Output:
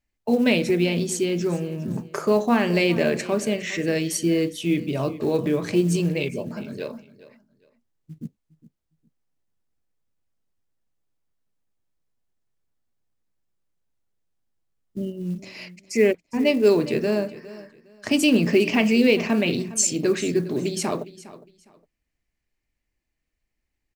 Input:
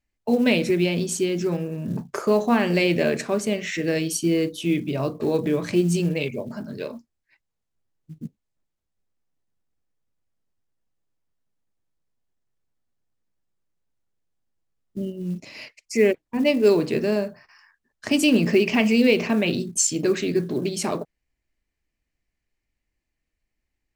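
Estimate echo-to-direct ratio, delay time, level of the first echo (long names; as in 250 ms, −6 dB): −17.5 dB, 409 ms, −17.5 dB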